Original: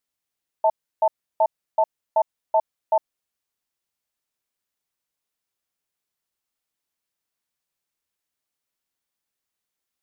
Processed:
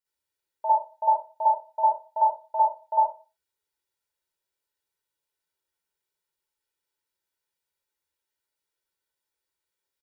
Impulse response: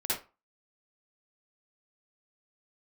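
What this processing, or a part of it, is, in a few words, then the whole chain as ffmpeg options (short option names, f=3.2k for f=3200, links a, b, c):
microphone above a desk: -filter_complex "[0:a]aecho=1:1:2.1:0.58[a];[1:a]atrim=start_sample=2205[b];[a][b]afir=irnorm=-1:irlink=0,volume=-8dB"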